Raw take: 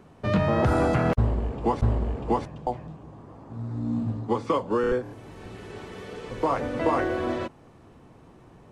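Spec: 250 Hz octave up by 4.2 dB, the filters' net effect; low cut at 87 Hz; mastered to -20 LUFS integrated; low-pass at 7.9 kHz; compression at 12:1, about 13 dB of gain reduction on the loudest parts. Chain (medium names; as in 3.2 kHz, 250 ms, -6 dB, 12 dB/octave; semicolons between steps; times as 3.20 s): high-pass 87 Hz; low-pass 7.9 kHz; peaking EQ 250 Hz +5.5 dB; compression 12:1, threshold -30 dBFS; trim +16 dB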